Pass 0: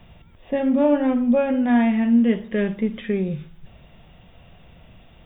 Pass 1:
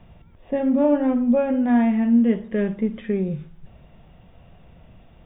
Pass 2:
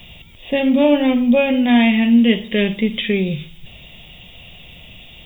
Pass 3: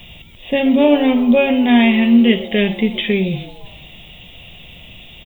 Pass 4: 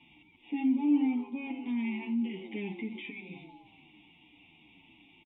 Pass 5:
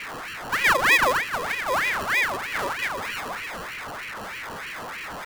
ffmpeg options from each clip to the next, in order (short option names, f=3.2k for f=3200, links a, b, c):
-af "highshelf=f=2.4k:g=-12"
-af "aexciter=amount=14:drive=5:freq=2.3k,volume=4.5dB"
-filter_complex "[0:a]asplit=5[a][b][c][d][e];[b]adelay=128,afreqshift=150,volume=-19dB[f];[c]adelay=256,afreqshift=300,volume=-25dB[g];[d]adelay=384,afreqshift=450,volume=-31dB[h];[e]adelay=512,afreqshift=600,volume=-37.1dB[i];[a][f][g][h][i]amix=inputs=5:normalize=0,volume=1.5dB"
-filter_complex "[0:a]alimiter=limit=-12.5dB:level=0:latency=1:release=89,asplit=3[a][b][c];[a]bandpass=f=300:t=q:w=8,volume=0dB[d];[b]bandpass=f=870:t=q:w=8,volume=-6dB[e];[c]bandpass=f=2.24k:t=q:w=8,volume=-9dB[f];[d][e][f]amix=inputs=3:normalize=0,asplit=2[g][h];[h]adelay=8.5,afreqshift=-2.9[i];[g][i]amix=inputs=2:normalize=1"
-af "aeval=exprs='val(0)+0.5*0.0158*sgn(val(0))':c=same,acrusher=samples=31:mix=1:aa=0.000001,aeval=exprs='val(0)*sin(2*PI*1500*n/s+1500*0.5/3.2*sin(2*PI*3.2*n/s))':c=same,volume=9dB"